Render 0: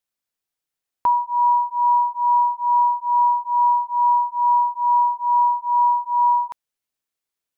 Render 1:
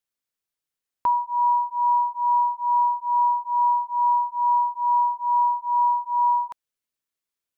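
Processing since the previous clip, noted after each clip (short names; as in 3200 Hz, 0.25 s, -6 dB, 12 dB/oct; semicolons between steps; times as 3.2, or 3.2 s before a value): bell 760 Hz -4.5 dB 0.3 oct; gain -2.5 dB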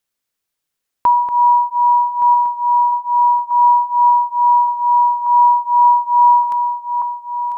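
regenerating reverse delay 0.585 s, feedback 67%, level -10 dB; gain +8.5 dB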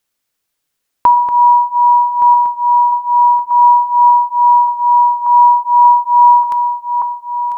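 FDN reverb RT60 0.72 s, low-frequency decay 1.05×, high-frequency decay 0.75×, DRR 12.5 dB; gain +5.5 dB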